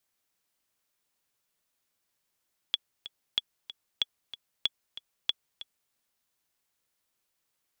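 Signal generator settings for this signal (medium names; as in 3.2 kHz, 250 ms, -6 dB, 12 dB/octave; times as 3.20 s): metronome 188 bpm, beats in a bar 2, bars 5, 3.38 kHz, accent 15 dB -12 dBFS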